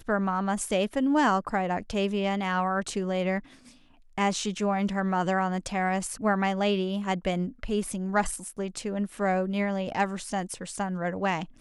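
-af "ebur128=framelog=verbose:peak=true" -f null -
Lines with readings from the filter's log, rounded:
Integrated loudness:
  I:         -28.1 LUFS
  Threshold: -38.3 LUFS
Loudness range:
  LRA:         2.7 LU
  Threshold: -48.4 LUFS
  LRA low:   -29.6 LUFS
  LRA high:  -27.0 LUFS
True peak:
  Peak:      -12.0 dBFS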